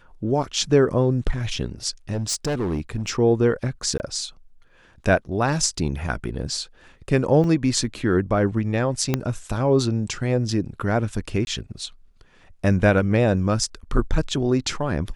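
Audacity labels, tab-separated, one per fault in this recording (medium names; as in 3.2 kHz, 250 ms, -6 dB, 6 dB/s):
2.120000	3.100000	clipped -20.5 dBFS
3.980000	4.000000	dropout 19 ms
7.440000	7.440000	dropout 2.2 ms
9.140000	9.140000	pop -7 dBFS
11.450000	11.470000	dropout 21 ms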